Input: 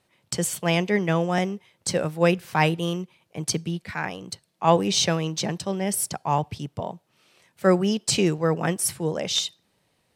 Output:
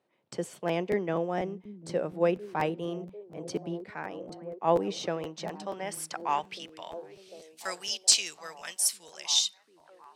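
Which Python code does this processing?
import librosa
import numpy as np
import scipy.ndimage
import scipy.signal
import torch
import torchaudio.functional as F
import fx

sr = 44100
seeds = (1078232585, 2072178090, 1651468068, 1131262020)

y = fx.tilt_eq(x, sr, slope=2.5)
y = fx.rider(y, sr, range_db=5, speed_s=2.0)
y = fx.filter_sweep_bandpass(y, sr, from_hz=380.0, to_hz=5200.0, start_s=5.03, end_s=7.37, q=0.93)
y = fx.echo_stepped(y, sr, ms=747, hz=190.0, octaves=0.7, feedback_pct=70, wet_db=-9)
y = fx.buffer_crackle(y, sr, first_s=0.67, period_s=0.24, block=512, kind='repeat')
y = F.gain(torch.from_numpy(y), -2.5).numpy()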